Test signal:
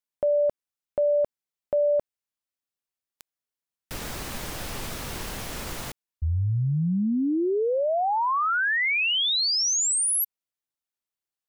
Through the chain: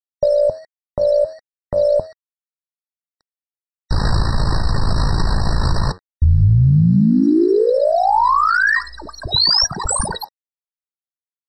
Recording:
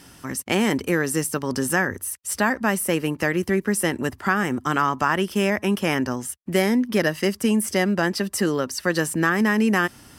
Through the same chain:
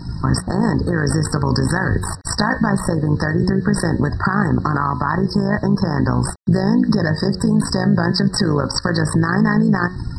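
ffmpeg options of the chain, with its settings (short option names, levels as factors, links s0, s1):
-filter_complex "[0:a]asplit=2[s0][s1];[s1]acrusher=samples=10:mix=1:aa=0.000001:lfo=1:lforange=10:lforate=3.9,volume=0.316[s2];[s0][s2]amix=inputs=2:normalize=0,tremolo=f=55:d=0.788,equalizer=f=250:t=o:w=0.67:g=-5,equalizer=f=1000:t=o:w=0.67:g=8,equalizer=f=2500:t=o:w=0.67:g=10,aeval=exprs='1.06*(cos(1*acos(clip(val(0)/1.06,-1,1)))-cos(1*PI/2))+0.0531*(cos(2*acos(clip(val(0)/1.06,-1,1)))-cos(2*PI/2))+0.0422*(cos(5*acos(clip(val(0)/1.06,-1,1)))-cos(5*PI/2))':c=same,acompressor=threshold=0.0447:ratio=3:attack=3.8:release=252:knee=1:detection=peak,bass=f=250:g=15,treble=f=4000:g=11,bandreject=f=91.16:t=h:w=4,bandreject=f=182.32:t=h:w=4,bandreject=f=273.48:t=h:w=4,bandreject=f=364.64:t=h:w=4,bandreject=f=455.8:t=h:w=4,bandreject=f=546.96:t=h:w=4,bandreject=f=638.12:t=h:w=4,bandreject=f=729.28:t=h:w=4,bandreject=f=820.44:t=h:w=4,bandreject=f=911.6:t=h:w=4,bandreject=f=1002.76:t=h:w=4,bandreject=f=1093.92:t=h:w=4,bandreject=f=1185.08:t=h:w=4,bandreject=f=1276.24:t=h:w=4,bandreject=f=1367.4:t=h:w=4,bandreject=f=1458.56:t=h:w=4,bandreject=f=1549.72:t=h:w=4,bandreject=f=1640.88:t=h:w=4,bandreject=f=1732.04:t=h:w=4,bandreject=f=1823.2:t=h:w=4,bandreject=f=1914.36:t=h:w=4,bandreject=f=2005.52:t=h:w=4,bandreject=f=2096.68:t=h:w=4,bandreject=f=2187.84:t=h:w=4,bandreject=f=2279:t=h:w=4,afftdn=nr=21:nf=-40,acrusher=bits=8:mix=0:aa=0.000001,lowpass=f=6000:w=0.5412,lowpass=f=6000:w=1.3066,alimiter=level_in=8.91:limit=0.891:release=50:level=0:latency=1,afftfilt=real='re*eq(mod(floor(b*sr/1024/1900),2),0)':imag='im*eq(mod(floor(b*sr/1024/1900),2),0)':win_size=1024:overlap=0.75,volume=0.531"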